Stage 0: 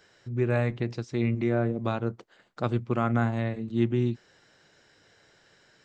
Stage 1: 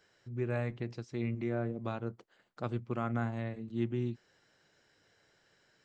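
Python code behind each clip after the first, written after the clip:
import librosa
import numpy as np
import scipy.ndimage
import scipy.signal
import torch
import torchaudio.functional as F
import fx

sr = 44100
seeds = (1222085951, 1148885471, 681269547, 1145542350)

y = fx.notch(x, sr, hz=3700.0, q=27.0)
y = y * 10.0 ** (-8.5 / 20.0)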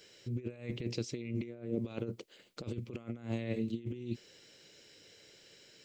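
y = fx.low_shelf(x, sr, hz=270.0, db=-10.5)
y = fx.over_compress(y, sr, threshold_db=-45.0, ratio=-0.5)
y = fx.band_shelf(y, sr, hz=1100.0, db=-13.0, octaves=1.7)
y = y * 10.0 ** (8.5 / 20.0)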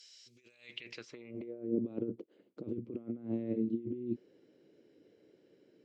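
y = fx.filter_sweep_bandpass(x, sr, from_hz=5400.0, to_hz=300.0, start_s=0.51, end_s=1.69, q=2.0)
y = y * 10.0 ** (6.0 / 20.0)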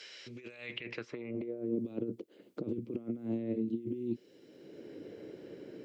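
y = fx.band_squash(x, sr, depth_pct=70)
y = y * 10.0 ** (1.5 / 20.0)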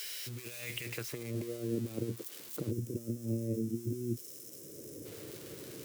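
y = x + 0.5 * 10.0 ** (-35.0 / 20.0) * np.diff(np.sign(x), prepend=np.sign(x[:1]))
y = fx.spec_box(y, sr, start_s=2.71, length_s=2.35, low_hz=640.0, high_hz=5000.0, gain_db=-12)
y = fx.low_shelf_res(y, sr, hz=160.0, db=8.0, q=1.5)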